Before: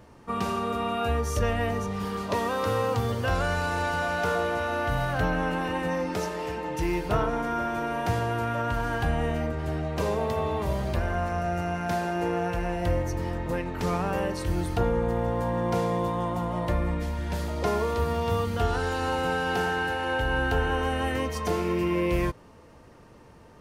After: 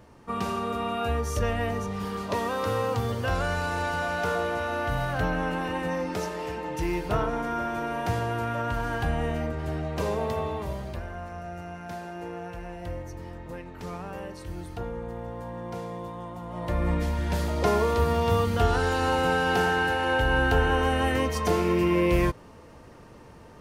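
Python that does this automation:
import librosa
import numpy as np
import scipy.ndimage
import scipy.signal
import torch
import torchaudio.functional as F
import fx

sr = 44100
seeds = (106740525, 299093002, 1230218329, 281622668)

y = fx.gain(x, sr, db=fx.line((10.34, -1.0), (11.11, -9.5), (16.42, -9.5), (16.91, 3.0)))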